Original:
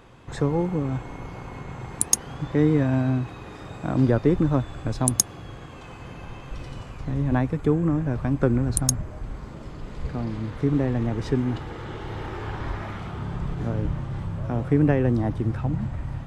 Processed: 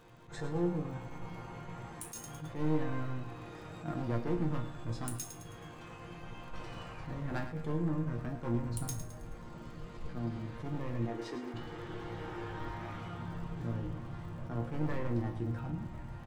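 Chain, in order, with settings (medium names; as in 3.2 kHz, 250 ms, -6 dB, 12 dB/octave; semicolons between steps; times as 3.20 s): 6.50–7.39 s: peaking EQ 1.1 kHz +6.5 dB 2.9 oct; 11.05–11.54 s: steep high-pass 240 Hz; in parallel at -2.5 dB: compression, threshold -32 dBFS, peak gain reduction 17.5 dB; on the sum: hard clipper -17.5 dBFS, distortion -10 dB; chord resonator A#2 sus4, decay 0.27 s; crackle 61 per s -54 dBFS; on a send: feedback delay 107 ms, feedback 45%, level -11 dB; on the sum: attacks held to a fixed rise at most 160 dB/s; trim +1 dB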